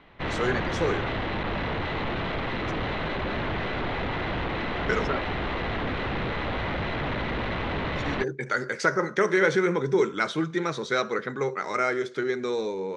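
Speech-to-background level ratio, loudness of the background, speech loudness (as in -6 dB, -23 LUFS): 2.5 dB, -29.5 LUFS, -27.0 LUFS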